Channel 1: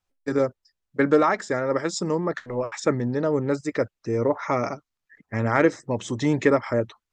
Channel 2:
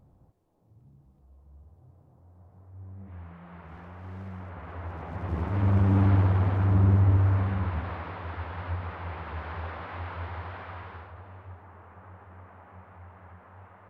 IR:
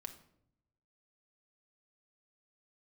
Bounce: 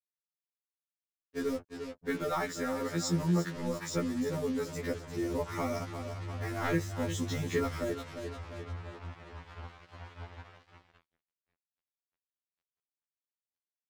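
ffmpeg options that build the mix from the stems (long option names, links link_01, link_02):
-filter_complex "[0:a]asoftclip=type=tanh:threshold=-7.5dB,bass=frequency=250:gain=4,treble=frequency=4000:gain=-2,adelay=1100,volume=0.5dB,asplit=2[link_01][link_02];[link_02]volume=-11.5dB[link_03];[1:a]alimiter=level_in=0.5dB:limit=-24dB:level=0:latency=1,volume=-0.5dB,acompressor=mode=upward:threshold=-41dB:ratio=2.5,volume=-11dB,asplit=3[link_04][link_05][link_06];[link_05]volume=-17.5dB[link_07];[link_06]volume=-16dB[link_08];[2:a]atrim=start_sample=2205[link_09];[link_07][link_09]afir=irnorm=-1:irlink=0[link_10];[link_03][link_08]amix=inputs=2:normalize=0,aecho=0:1:349|698|1047|1396|1745|2094:1|0.46|0.212|0.0973|0.0448|0.0206[link_11];[link_01][link_04][link_10][link_11]amix=inputs=4:normalize=0,acrossover=split=180|3000[link_12][link_13][link_14];[link_13]acompressor=threshold=-46dB:ratio=1.5[link_15];[link_12][link_15][link_14]amix=inputs=3:normalize=0,acrusher=bits=6:mix=0:aa=0.5,afftfilt=real='re*2*eq(mod(b,4),0)':imag='im*2*eq(mod(b,4),0)':win_size=2048:overlap=0.75"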